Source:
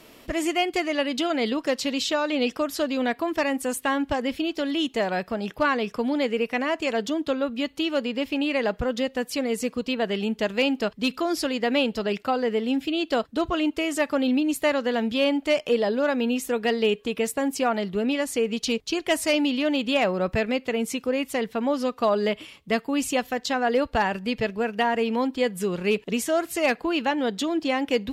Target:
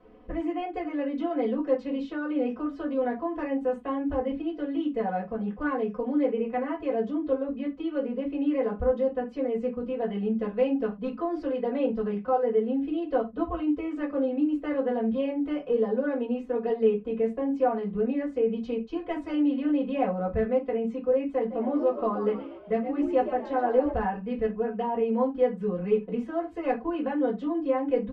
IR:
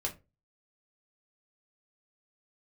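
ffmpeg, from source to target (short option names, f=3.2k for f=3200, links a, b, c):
-filter_complex "[0:a]lowpass=1.1k,bandreject=f=600:w=12,aecho=1:1:4:0.99,asplit=3[a][b][c];[a]afade=t=out:st=21.5:d=0.02[d];[b]asplit=6[e][f][g][h][i][j];[f]adelay=122,afreqshift=64,volume=-11dB[k];[g]adelay=244,afreqshift=128,volume=-17.4dB[l];[h]adelay=366,afreqshift=192,volume=-23.8dB[m];[i]adelay=488,afreqshift=256,volume=-30.1dB[n];[j]adelay=610,afreqshift=320,volume=-36.5dB[o];[e][k][l][m][n][o]amix=inputs=6:normalize=0,afade=t=in:st=21.5:d=0.02,afade=t=out:st=23.9:d=0.02[p];[c]afade=t=in:st=23.9:d=0.02[q];[d][p][q]amix=inputs=3:normalize=0[r];[1:a]atrim=start_sample=2205,atrim=end_sample=4410[s];[r][s]afir=irnorm=-1:irlink=0,volume=-8dB"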